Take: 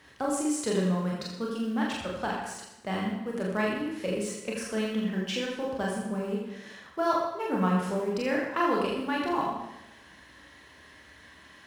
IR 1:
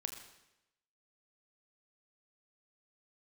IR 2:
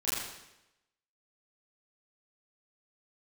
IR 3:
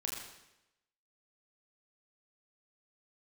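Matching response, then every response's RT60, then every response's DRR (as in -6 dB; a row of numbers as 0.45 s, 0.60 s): 3; 0.90 s, 0.90 s, 0.90 s; 3.5 dB, -12.5 dB, -3.5 dB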